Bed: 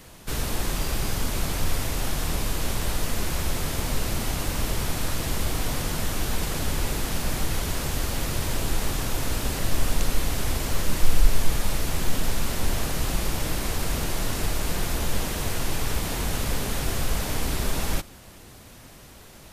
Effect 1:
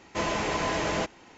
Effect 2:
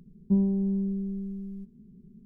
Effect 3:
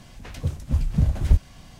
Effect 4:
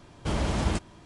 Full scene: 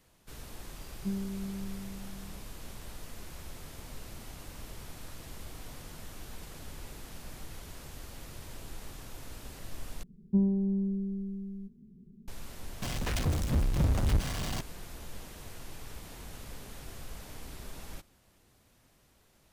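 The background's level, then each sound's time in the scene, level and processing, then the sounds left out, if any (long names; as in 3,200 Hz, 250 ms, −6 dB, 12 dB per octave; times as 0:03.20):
bed −18.5 dB
0:00.75: mix in 2 −11 dB
0:10.03: overwrite with 2 −2.5 dB
0:12.82: mix in 3 −14 dB + power curve on the samples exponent 0.35
not used: 1, 4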